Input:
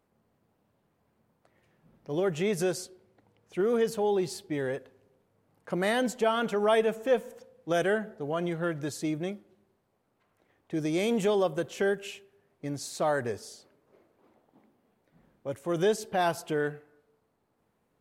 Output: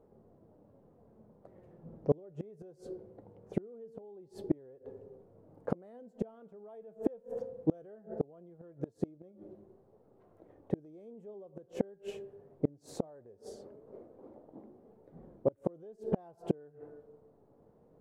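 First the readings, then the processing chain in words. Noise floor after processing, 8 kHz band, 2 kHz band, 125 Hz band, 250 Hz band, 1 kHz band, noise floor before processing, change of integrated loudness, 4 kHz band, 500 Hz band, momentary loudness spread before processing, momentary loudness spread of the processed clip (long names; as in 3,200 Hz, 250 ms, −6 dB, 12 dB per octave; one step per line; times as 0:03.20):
−65 dBFS, below −20 dB, −28.0 dB, −4.5 dB, −6.0 dB, −18.0 dB, −74 dBFS, −10.0 dB, below −20 dB, −10.5 dB, 13 LU, 20 LU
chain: drawn EQ curve 260 Hz 0 dB, 500 Hz +4 dB, 2,400 Hz −22 dB
flanger 0.2 Hz, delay 2.2 ms, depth 5 ms, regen +77%
in parallel at +2.5 dB: brickwall limiter −30.5 dBFS, peak gain reduction 13.5 dB
on the sum: gate with flip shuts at −23 dBFS, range −33 dB
level +7.5 dB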